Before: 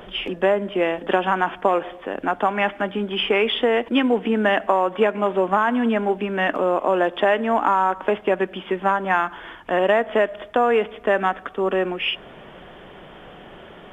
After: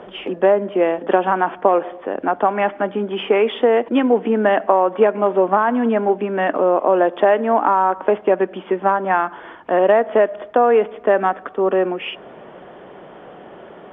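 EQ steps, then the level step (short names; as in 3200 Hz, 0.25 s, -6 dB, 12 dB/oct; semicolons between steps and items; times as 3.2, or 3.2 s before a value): band-pass 520 Hz, Q 0.59; +5.0 dB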